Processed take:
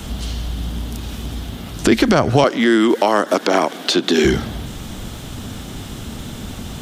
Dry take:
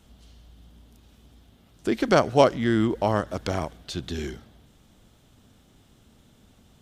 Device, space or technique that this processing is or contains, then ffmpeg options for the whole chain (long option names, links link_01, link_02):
mastering chain: -filter_complex "[0:a]equalizer=frequency=540:width_type=o:width=0.84:gain=-2.5,acrossover=split=120|1300|5700[link_01][link_02][link_03][link_04];[link_01]acompressor=threshold=-47dB:ratio=4[link_05];[link_02]acompressor=threshold=-32dB:ratio=4[link_06];[link_03]acompressor=threshold=-43dB:ratio=4[link_07];[link_04]acompressor=threshold=-58dB:ratio=4[link_08];[link_05][link_06][link_07][link_08]amix=inputs=4:normalize=0,acompressor=threshold=-42dB:ratio=1.5,alimiter=level_in=28dB:limit=-1dB:release=50:level=0:latency=1,asettb=1/sr,asplit=3[link_09][link_10][link_11];[link_09]atrim=end=2.444[link_12];[link_10]atrim=start=2.44:end=4.25,asetpts=PTS-STARTPTS,afade=type=in:duration=0.004:curve=qsin,afade=type=out:start_time=1.806:duration=0.004:curve=qsin,highpass=frequency=250:width=0.5412,highpass=frequency=250:width=1.3066[link_13];[link_11]atrim=start=4.246[link_14];[link_12][link_13]acrossfade=duration=0.004:curve1=hsin:curve2=qsin[link_15];[link_15][link_14]acrossfade=duration=0.004:curve1=qsin:curve2=hsin,volume=-1dB"